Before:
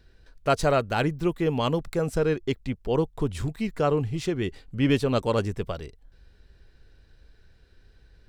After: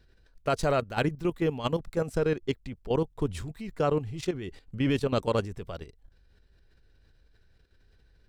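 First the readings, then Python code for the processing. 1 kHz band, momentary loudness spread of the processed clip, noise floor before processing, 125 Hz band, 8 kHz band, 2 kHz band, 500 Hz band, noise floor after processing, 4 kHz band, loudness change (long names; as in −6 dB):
−4.0 dB, 12 LU, −59 dBFS, −4.0 dB, −4.0 dB, −3.5 dB, −3.0 dB, −63 dBFS, −4.0 dB, −3.5 dB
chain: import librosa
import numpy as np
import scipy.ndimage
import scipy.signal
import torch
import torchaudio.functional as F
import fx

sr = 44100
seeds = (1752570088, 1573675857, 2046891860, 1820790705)

y = fx.level_steps(x, sr, step_db=12)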